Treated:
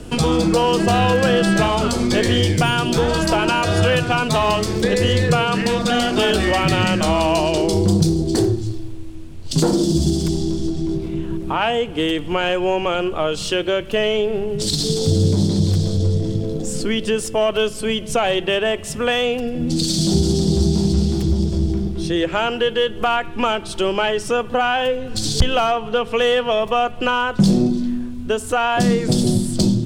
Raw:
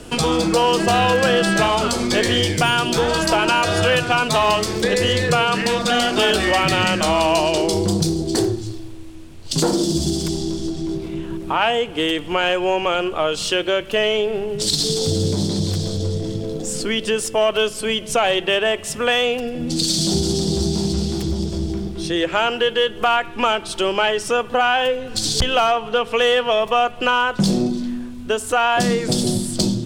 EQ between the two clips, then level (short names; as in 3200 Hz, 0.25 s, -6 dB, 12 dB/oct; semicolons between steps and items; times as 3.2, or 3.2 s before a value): low shelf 320 Hz +9 dB; -2.5 dB